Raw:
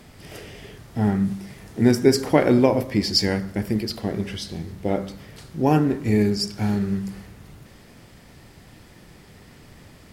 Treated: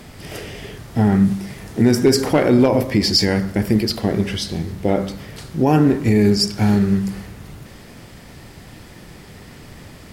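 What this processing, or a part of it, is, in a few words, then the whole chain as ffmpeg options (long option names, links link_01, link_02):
clipper into limiter: -af "asoftclip=type=hard:threshold=-7dB,alimiter=limit=-13dB:level=0:latency=1:release=47,volume=7.5dB"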